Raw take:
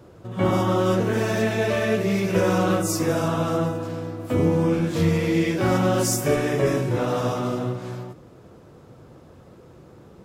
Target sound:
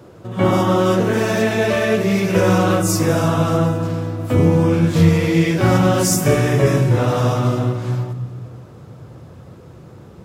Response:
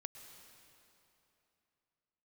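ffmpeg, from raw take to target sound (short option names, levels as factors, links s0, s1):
-filter_complex "[0:a]highpass=89,asplit=2[s0][s1];[s1]asubboost=boost=7.5:cutoff=160[s2];[1:a]atrim=start_sample=2205[s3];[s2][s3]afir=irnorm=-1:irlink=0,volume=0.794[s4];[s0][s4]amix=inputs=2:normalize=0,volume=1.33"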